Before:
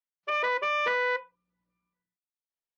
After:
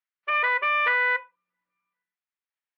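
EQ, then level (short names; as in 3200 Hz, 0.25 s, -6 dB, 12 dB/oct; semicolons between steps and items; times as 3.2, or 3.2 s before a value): band-pass 1900 Hz, Q 1.2; air absorption 170 m; +9.0 dB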